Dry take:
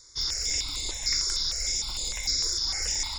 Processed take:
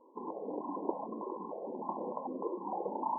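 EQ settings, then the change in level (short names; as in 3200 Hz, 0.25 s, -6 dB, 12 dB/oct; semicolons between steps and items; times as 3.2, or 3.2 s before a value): brick-wall FIR band-pass 180–1100 Hz; +12.5 dB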